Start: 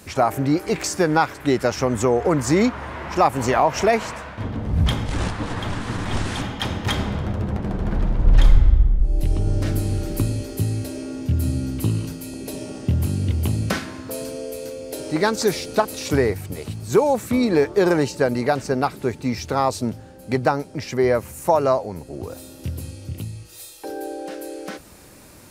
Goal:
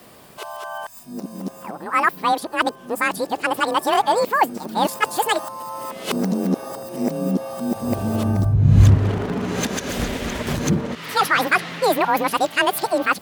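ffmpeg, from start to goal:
-af "areverse,afreqshift=17,asetrate=85113,aresample=44100"

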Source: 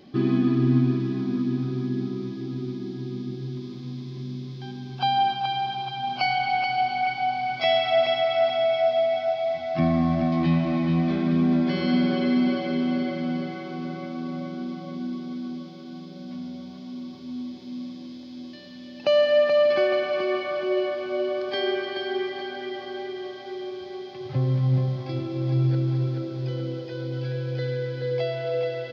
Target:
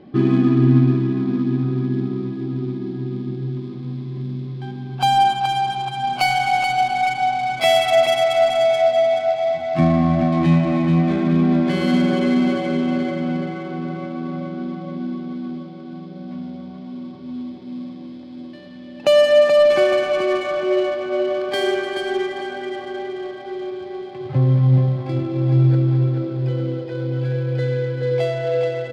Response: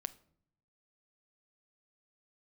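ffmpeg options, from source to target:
-filter_complex "[0:a]adynamicsmooth=sensitivity=5:basefreq=2000,asplit=2[s0][s1];[1:a]atrim=start_sample=2205[s2];[s1][s2]afir=irnorm=-1:irlink=0,volume=1.33[s3];[s0][s3]amix=inputs=2:normalize=0"

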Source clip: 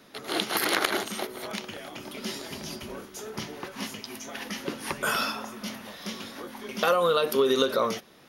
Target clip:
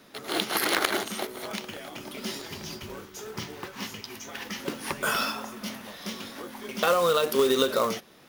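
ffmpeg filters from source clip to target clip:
-filter_complex "[0:a]asettb=1/sr,asplit=3[s0][s1][s2];[s0]atrim=end=2.414[s3];[s1]atrim=start=2.41:end=4.6,asetpts=PTS-STARTPTS,afade=t=in:d=0.004:c=qsin,afade=t=out:st=2.186:d=0.004:c=qsin,equalizer=f=100:t=o:w=0.33:g=7,equalizer=f=250:t=o:w=0.33:g=-6,equalizer=f=630:t=o:w=0.33:g=-6,equalizer=f=10000:t=o:w=0.33:g=-9[s4];[s2]atrim=start=4.596[s5];[s3][s4]acrossfade=d=0.004:c1=hsin:c2=qsin[s6];[s6][s5]acrossfade=d=0.004:c1=qsin:c2=hsin,acrusher=bits=3:mode=log:mix=0:aa=0.000001"

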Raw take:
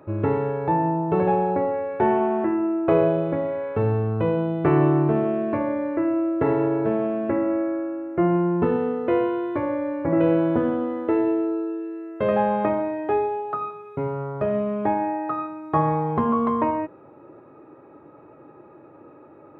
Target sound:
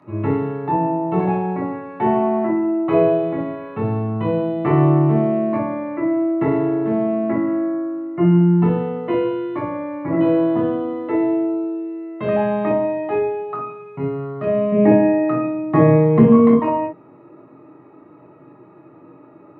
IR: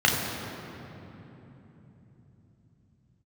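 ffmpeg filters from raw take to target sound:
-filter_complex "[0:a]asettb=1/sr,asplit=3[s0][s1][s2];[s0]atrim=end=14.724[s3];[s1]atrim=start=14.72:end=16.53,asetpts=PTS-STARTPTS,afade=t=in:d=0.004:c=qsin,afade=t=out:st=1.806:d=0.004:c=qsin,equalizer=f=125:t=o:w=1:g=10,equalizer=f=250:t=o:w=1:g=8,equalizer=f=500:t=o:w=1:g=10,equalizer=f=1000:t=o:w=1:g=-7,equalizer=f=2000:t=o:w=1:g=8[s4];[s2]atrim=start=16.526[s5];[s3][s4]acrossfade=d=0.004:c1=hsin:c2=qsin[s6];[s6][s5]acrossfade=d=0.004:c1=qsin:c2=hsin[s7];[1:a]atrim=start_sample=2205,atrim=end_sample=4410,asetrate=61740,aresample=44100[s8];[s7][s8]afir=irnorm=-1:irlink=0,volume=0.299"

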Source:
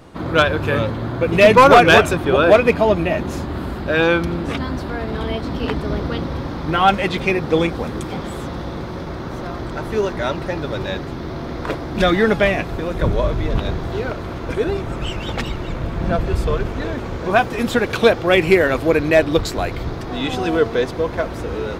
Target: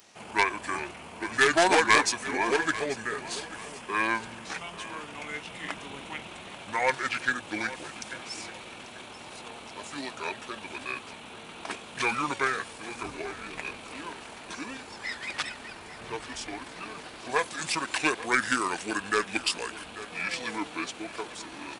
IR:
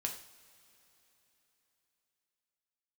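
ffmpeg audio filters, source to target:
-filter_complex "[0:a]asetrate=29433,aresample=44100,atempo=1.49831,aderivative,aeval=exprs='0.224*(cos(1*acos(clip(val(0)/0.224,-1,1)))-cos(1*PI/2))+0.0224*(cos(2*acos(clip(val(0)/0.224,-1,1)))-cos(2*PI/2))':c=same,asplit=2[s0][s1];[s1]aecho=0:1:840|1680|2520:0.158|0.0523|0.0173[s2];[s0][s2]amix=inputs=2:normalize=0,volume=2.51"

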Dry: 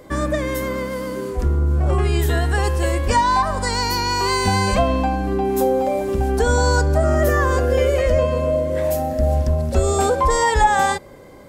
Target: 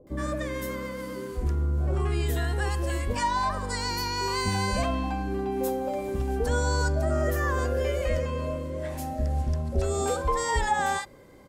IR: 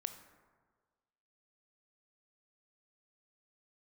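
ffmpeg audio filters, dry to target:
-filter_complex "[0:a]asettb=1/sr,asplit=3[s0][s1][s2];[s0]atrim=end=8.634[s3];[s1]atrim=start=8.63:end=9.77,asetpts=PTS-STARTPTS,afade=t=in:d=0.004:c=qsin,afade=t=out:st=1.136:d=0.004:c=qsin,lowpass=11000[s4];[s2]atrim=start=9.766[s5];[s3][s4]acrossfade=d=0.004:c1=hsin:c2=qsin[s6];[s6][s5]acrossfade=d=0.004:c1=qsin:c2=hsin,acrossover=split=690[s7][s8];[s8]adelay=70[s9];[s7][s9]amix=inputs=2:normalize=0,volume=0.398"

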